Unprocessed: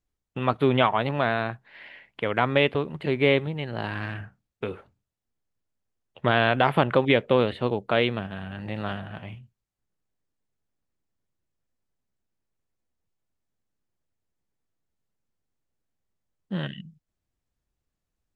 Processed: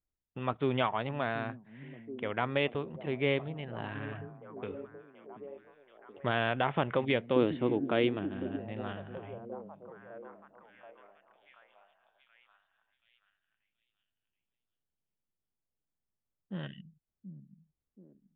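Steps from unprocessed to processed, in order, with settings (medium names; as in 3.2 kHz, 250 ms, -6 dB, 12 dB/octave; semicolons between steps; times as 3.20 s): repeats whose band climbs or falls 729 ms, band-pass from 190 Hz, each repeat 0.7 oct, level -8 dB; resampled via 8 kHz; 7.36–8.56 s: peaking EQ 310 Hz +14.5 dB 0.61 oct; tape noise reduction on one side only decoder only; trim -9 dB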